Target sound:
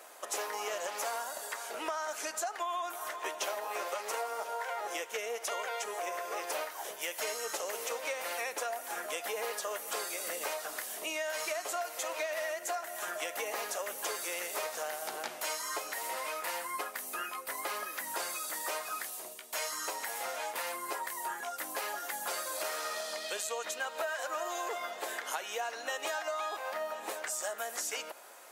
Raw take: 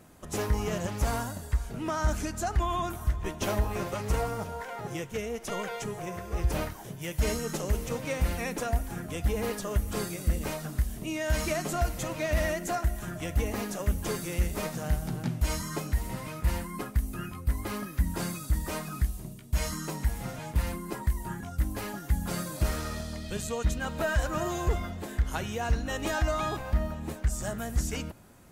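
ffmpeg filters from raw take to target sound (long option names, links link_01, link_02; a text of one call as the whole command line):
ffmpeg -i in.wav -af "highpass=frequency=520:width=0.5412,highpass=frequency=520:width=1.3066,acompressor=threshold=-41dB:ratio=6,volume=7.5dB" out.wav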